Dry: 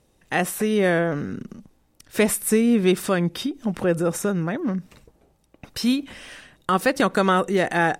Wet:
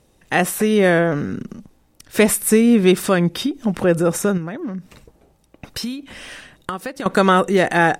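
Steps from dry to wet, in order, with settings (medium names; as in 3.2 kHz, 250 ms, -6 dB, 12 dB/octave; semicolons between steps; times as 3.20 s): 4.37–7.06 s: compression 12:1, threshold -29 dBFS, peak gain reduction 15.5 dB; trim +5 dB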